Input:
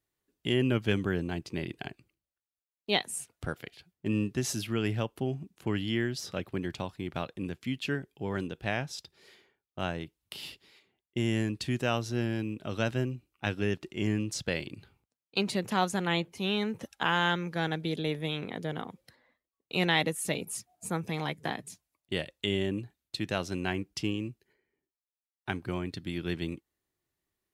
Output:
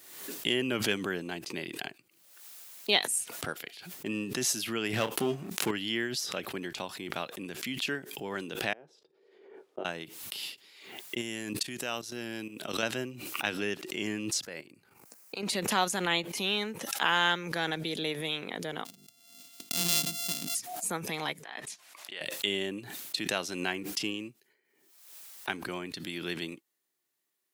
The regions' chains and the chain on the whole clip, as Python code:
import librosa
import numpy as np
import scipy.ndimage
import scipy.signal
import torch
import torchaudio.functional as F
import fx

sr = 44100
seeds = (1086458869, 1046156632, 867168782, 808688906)

y = fx.chain(x, sr, fx.leveller(passes=2),
    fx.doubler(ms=28.0, db=-11), at=(4.93, 5.71))
y = fx.chain(y, sr, fx.over_compress(threshold_db=-36.0, ratio=-0.5),
    fx.bandpass_q(hz=420.0, q=3.1),
    fx.doubler(ms=13.0, db=-11.5), at=(8.73, 9.85))
y = fx.chain(y, sr, fx.high_shelf(hz=5600.0, db=5.5),
    fx.level_steps(step_db=17), at=(11.21, 12.83))
y = fx.chain(y, sr, fx.peak_eq(hz=3400.0, db=-13.5, octaves=0.66),
    fx.level_steps(step_db=13), at=(14.41, 15.43))
y = fx.chain(y, sr, fx.sample_sort(block=64),
    fx.band_shelf(hz=920.0, db=-14.5, octaves=2.8),
    fx.hum_notches(base_hz=50, count=9), at=(18.85, 20.55))
y = fx.chain(y, sr, fx.bandpass_q(hz=1600.0, q=0.59),
    fx.over_compress(threshold_db=-46.0, ratio=-1.0), at=(21.43, 22.21))
y = scipy.signal.sosfilt(scipy.signal.butter(2, 190.0, 'highpass', fs=sr, output='sos'), y)
y = fx.tilt_eq(y, sr, slope=2.0)
y = fx.pre_swell(y, sr, db_per_s=55.0)